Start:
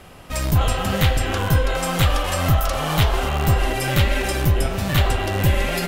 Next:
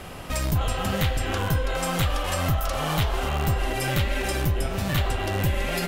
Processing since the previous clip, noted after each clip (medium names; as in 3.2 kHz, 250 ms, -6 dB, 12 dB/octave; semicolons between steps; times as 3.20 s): compression 2:1, threshold -35 dBFS, peak gain reduction 12.5 dB; trim +5 dB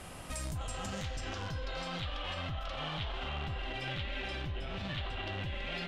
peaking EQ 420 Hz -3.5 dB 0.36 oct; peak limiter -22.5 dBFS, peak gain reduction 10.5 dB; low-pass sweep 9.8 kHz -> 3.4 kHz, 0.33–2.21 s; trim -8.5 dB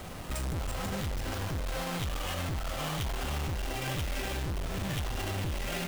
square wave that keeps the level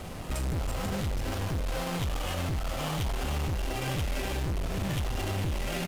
resampled via 32 kHz; in parallel at -7 dB: sample-and-hold 22×